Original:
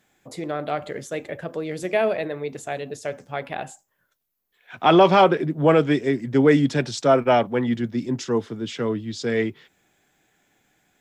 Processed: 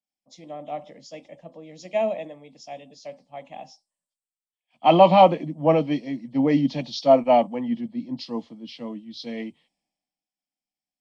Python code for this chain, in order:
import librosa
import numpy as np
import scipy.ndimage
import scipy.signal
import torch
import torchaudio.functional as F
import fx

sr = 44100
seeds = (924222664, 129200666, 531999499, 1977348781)

y = fx.freq_compress(x, sr, knee_hz=2800.0, ratio=1.5)
y = fx.fixed_phaser(y, sr, hz=400.0, stages=6)
y = fx.band_widen(y, sr, depth_pct=70)
y = F.gain(torch.from_numpy(y), -2.0).numpy()